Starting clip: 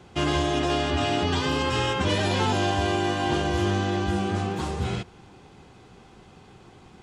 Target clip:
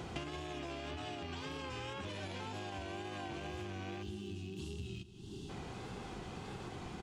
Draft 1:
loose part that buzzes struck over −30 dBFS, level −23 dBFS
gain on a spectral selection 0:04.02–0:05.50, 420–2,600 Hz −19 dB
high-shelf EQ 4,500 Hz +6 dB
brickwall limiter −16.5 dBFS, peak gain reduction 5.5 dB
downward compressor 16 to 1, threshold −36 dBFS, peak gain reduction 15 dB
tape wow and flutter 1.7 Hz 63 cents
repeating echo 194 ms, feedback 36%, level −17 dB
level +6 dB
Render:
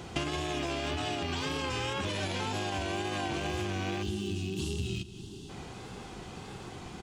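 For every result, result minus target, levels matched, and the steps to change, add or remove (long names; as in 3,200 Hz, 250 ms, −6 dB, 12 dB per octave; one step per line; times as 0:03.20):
downward compressor: peak gain reduction −10 dB; 8,000 Hz band +3.0 dB
change: downward compressor 16 to 1, threshold −46.5 dBFS, peak gain reduction 25 dB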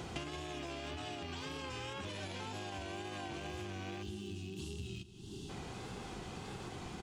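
8,000 Hz band +3.5 dB
remove: high-shelf EQ 4,500 Hz +6 dB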